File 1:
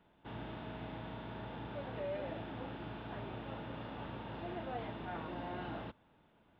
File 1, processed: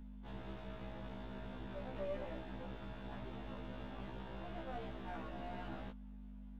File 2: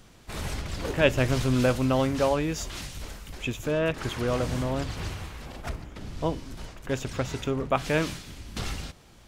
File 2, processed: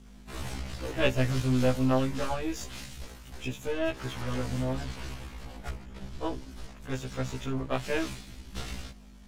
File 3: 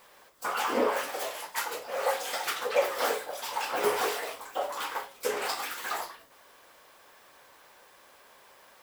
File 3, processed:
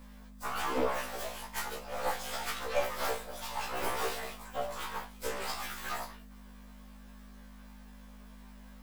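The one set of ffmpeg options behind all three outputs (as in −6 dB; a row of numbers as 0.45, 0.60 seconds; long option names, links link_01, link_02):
-af "aeval=exprs='if(lt(val(0),0),0.447*val(0),val(0))':channel_layout=same,aeval=exprs='val(0)+0.00562*(sin(2*PI*50*n/s)+sin(2*PI*2*50*n/s)/2+sin(2*PI*3*50*n/s)/3+sin(2*PI*4*50*n/s)/4+sin(2*PI*5*50*n/s)/5)':channel_layout=same,afftfilt=real='re*1.73*eq(mod(b,3),0)':imag='im*1.73*eq(mod(b,3),0)':win_size=2048:overlap=0.75"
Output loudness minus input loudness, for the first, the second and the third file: −3.5, −4.0, −5.0 LU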